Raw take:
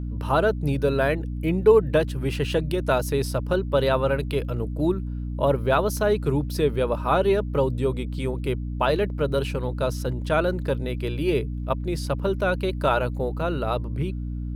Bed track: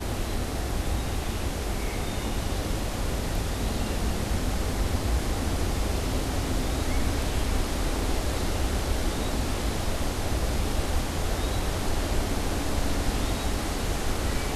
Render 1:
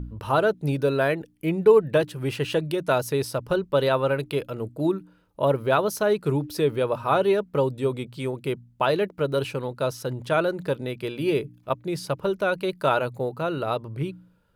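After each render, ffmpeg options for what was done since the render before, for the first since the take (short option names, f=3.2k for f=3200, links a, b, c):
-af "bandreject=f=60:t=h:w=4,bandreject=f=120:t=h:w=4,bandreject=f=180:t=h:w=4,bandreject=f=240:t=h:w=4,bandreject=f=300:t=h:w=4"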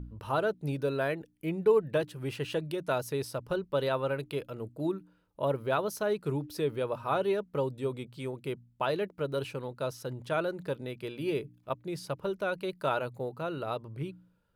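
-af "volume=-8dB"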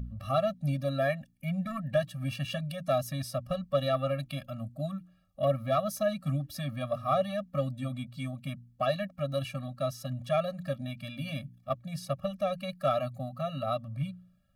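-filter_complex "[0:a]asplit=2[a][b];[b]aeval=exprs='0.2*sin(PI/2*1.78*val(0)/0.2)':c=same,volume=-11.5dB[c];[a][c]amix=inputs=2:normalize=0,afftfilt=real='re*eq(mod(floor(b*sr/1024/270),2),0)':imag='im*eq(mod(floor(b*sr/1024/270),2),0)':win_size=1024:overlap=0.75"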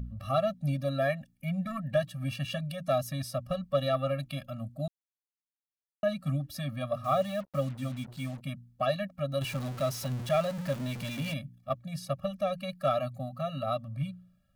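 -filter_complex "[0:a]asettb=1/sr,asplit=3[a][b][c];[a]atrim=end=7.044[d];[b]atrim=start=7.04:end=8.41,asetpts=PTS-STARTPTS,afade=t=in:d=0.004:c=qsin,afade=t=out:st=1.366:d=0.004:c=qsin,acrusher=bits=7:mix=0:aa=0.5[e];[c]atrim=start=8.406[f];[d][e]acrossfade=d=0.004:c1=hsin:c2=qsin[g];[g][f]acrossfade=d=0.004:c1=qsin:c2=hsin,asettb=1/sr,asplit=3[h][i][j];[h]atrim=end=9.414[k];[i]atrim=start=9.41:end=11.34,asetpts=PTS-STARTPTS,afade=t=in:d=0.004:c=qsin,afade=t=out:st=1.926:d=0.004:c=qsin,aeval=exprs='val(0)+0.5*0.015*sgn(val(0))':c=same[l];[j]atrim=start=11.336[m];[k][l]acrossfade=d=0.004:c1=hsin:c2=qsin[n];[n][m]acrossfade=d=0.004:c1=qsin:c2=hsin,asplit=3[o][p][q];[o]atrim=end=4.88,asetpts=PTS-STARTPTS,afade=t=out:st=4.876:d=0.004:c=hsin[r];[p]atrim=start=4.88:end=6.03,asetpts=PTS-STARTPTS,volume=0[s];[q]atrim=start=6.03,asetpts=PTS-STARTPTS,afade=t=in:d=0.004:c=hsin[t];[r][s][t]concat=n=3:v=0:a=1"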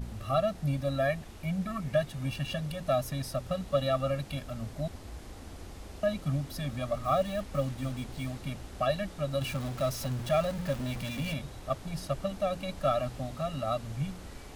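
-filter_complex "[1:a]volume=-18dB[a];[0:a][a]amix=inputs=2:normalize=0"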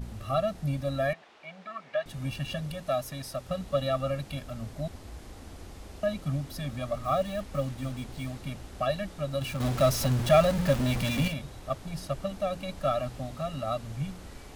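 -filter_complex "[0:a]asettb=1/sr,asplit=3[a][b][c];[a]atrim=end=1.134[d];[b]atrim=start=1.13:end=2.06,asetpts=PTS-STARTPTS,afade=t=in:d=0.004:c=qsin,afade=t=out:st=0.926:d=0.004:c=qsin,highpass=590,lowpass=3.5k[e];[c]atrim=start=2.056[f];[d][e]acrossfade=d=0.004:c1=hsin:c2=qsin[g];[g][f]acrossfade=d=0.004:c1=qsin:c2=hsin,asettb=1/sr,asplit=3[h][i][j];[h]atrim=end=2.804[k];[i]atrim=start=2.8:end=3.49,asetpts=PTS-STARTPTS,afade=t=in:d=0.004:c=qsin,afade=t=out:st=0.686:d=0.004:c=qsin,lowshelf=f=260:g=-7[l];[j]atrim=start=3.486[m];[k][l]acrossfade=d=0.004:c1=hsin:c2=qsin[n];[n][m]acrossfade=d=0.004:c1=qsin:c2=hsin,asettb=1/sr,asplit=3[o][p][q];[o]atrim=end=9.604[r];[p]atrim=start=9.6:end=11.28,asetpts=PTS-STARTPTS,afade=t=in:d=0.004:c=qsin,afade=t=out:st=1.676:d=0.004:c=qsin,acontrast=87[s];[q]atrim=start=11.276[t];[r][s]acrossfade=d=0.004:c1=hsin:c2=qsin[u];[u][t]acrossfade=d=0.004:c1=qsin:c2=hsin"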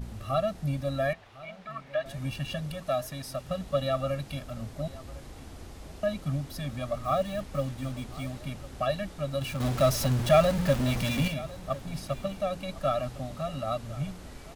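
-af "aecho=1:1:1054:0.106"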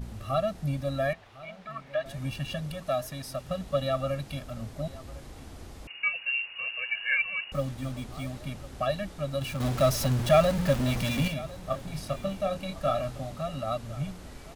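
-filter_complex "[0:a]asettb=1/sr,asplit=3[a][b][c];[a]atrim=end=5.874[d];[b]atrim=start=5.87:end=7.52,asetpts=PTS-STARTPTS,afade=t=in:d=0.004:c=qsin,afade=t=out:st=1.646:d=0.004:c=qsin,lowpass=f=2.5k:t=q:w=0.5098,lowpass=f=2.5k:t=q:w=0.6013,lowpass=f=2.5k:t=q:w=0.9,lowpass=f=2.5k:t=q:w=2.563,afreqshift=-2900[e];[c]atrim=start=7.516[f];[d][e]acrossfade=d=0.004:c1=hsin:c2=qsin[g];[g][f]acrossfade=d=0.004:c1=qsin:c2=hsin,asettb=1/sr,asplit=3[h][i][j];[h]atrim=end=11.654[k];[i]atrim=start=11.65:end=13.32,asetpts=PTS-STARTPTS,afade=t=in:d=0.004:c=qsin,afade=t=out:st=1.666:d=0.004:c=qsin,asplit=2[l][m];[m]adelay=26,volume=-7dB[n];[l][n]amix=inputs=2:normalize=0,atrim=end_sample=73647[o];[j]atrim=start=13.316[p];[k][o]acrossfade=d=0.004:c1=hsin:c2=qsin[q];[q][p]acrossfade=d=0.004:c1=qsin:c2=hsin"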